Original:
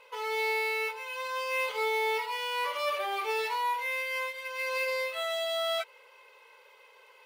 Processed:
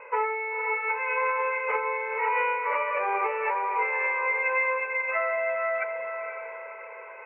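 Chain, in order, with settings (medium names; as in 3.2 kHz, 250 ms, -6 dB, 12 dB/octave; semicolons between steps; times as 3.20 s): steep low-pass 2.5 kHz 96 dB/octave; bass shelf 130 Hz -10 dB; compressor with a negative ratio -37 dBFS, ratio -1; echo that smears into a reverb 517 ms, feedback 42%, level -6 dB; reverberation RT60 0.45 s, pre-delay 7 ms, DRR 14 dB; trim +8.5 dB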